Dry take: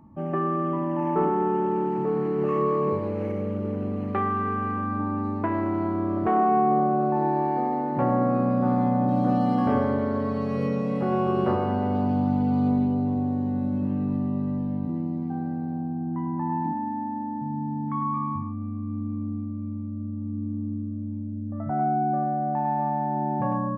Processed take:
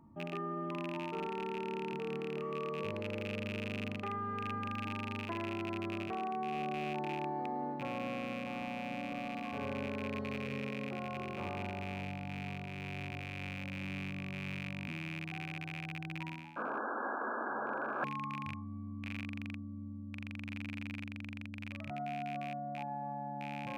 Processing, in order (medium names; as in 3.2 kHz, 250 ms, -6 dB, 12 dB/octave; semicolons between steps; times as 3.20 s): rattle on loud lows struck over -28 dBFS, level -18 dBFS; Doppler pass-by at 7.17 s, 10 m/s, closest 15 m; painted sound noise, 16.56–18.04 s, 210–1700 Hz -24 dBFS; reverse; compression 12:1, threshold -41 dBFS, peak gain reduction 22 dB; reverse; hum notches 60/120/180/240/300/360/420/480 Hz; trim +6 dB